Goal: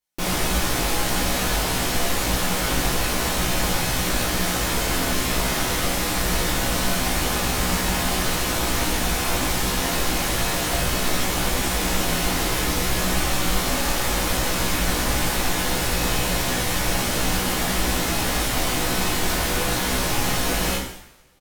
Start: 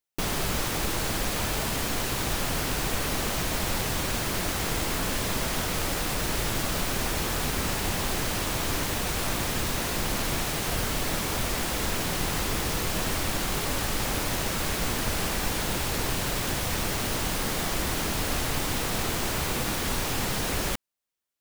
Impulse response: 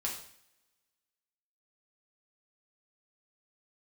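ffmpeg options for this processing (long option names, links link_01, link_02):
-filter_complex "[0:a]asplit=2[link_01][link_02];[link_02]adelay=16,volume=-4.5dB[link_03];[link_01][link_03]amix=inputs=2:normalize=0[link_04];[1:a]atrim=start_sample=2205,asetrate=33516,aresample=44100[link_05];[link_04][link_05]afir=irnorm=-1:irlink=0"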